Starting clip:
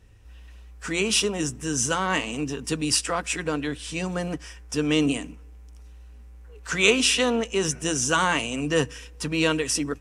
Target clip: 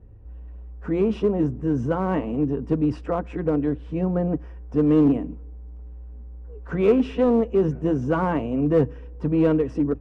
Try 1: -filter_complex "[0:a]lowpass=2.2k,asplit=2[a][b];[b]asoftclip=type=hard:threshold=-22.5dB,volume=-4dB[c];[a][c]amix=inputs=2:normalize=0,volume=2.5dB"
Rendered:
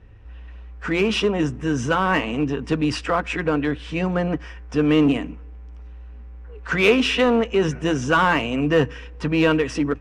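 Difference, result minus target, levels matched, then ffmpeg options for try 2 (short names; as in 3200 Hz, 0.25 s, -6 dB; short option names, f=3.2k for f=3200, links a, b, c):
2000 Hz band +14.0 dB
-filter_complex "[0:a]lowpass=620,asplit=2[a][b];[b]asoftclip=type=hard:threshold=-22.5dB,volume=-4dB[c];[a][c]amix=inputs=2:normalize=0,volume=2.5dB"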